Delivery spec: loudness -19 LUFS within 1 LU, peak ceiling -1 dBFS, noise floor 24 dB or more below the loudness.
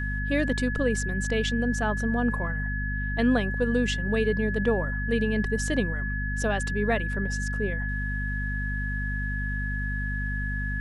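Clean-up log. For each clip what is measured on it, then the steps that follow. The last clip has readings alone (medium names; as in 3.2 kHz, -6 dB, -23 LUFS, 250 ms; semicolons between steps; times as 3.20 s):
hum 50 Hz; highest harmonic 250 Hz; hum level -27 dBFS; steady tone 1.7 kHz; tone level -32 dBFS; loudness -27.5 LUFS; peak level -12.5 dBFS; loudness target -19.0 LUFS
-> de-hum 50 Hz, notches 5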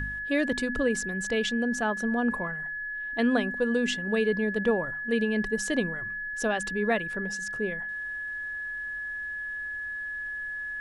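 hum not found; steady tone 1.7 kHz; tone level -32 dBFS
-> band-stop 1.7 kHz, Q 30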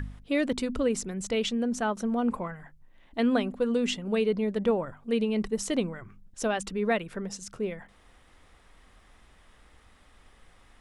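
steady tone not found; loudness -29.0 LUFS; peak level -14.0 dBFS; loudness target -19.0 LUFS
-> trim +10 dB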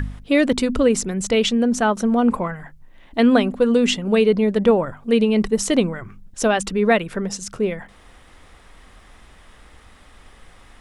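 loudness -19.0 LUFS; peak level -4.0 dBFS; noise floor -49 dBFS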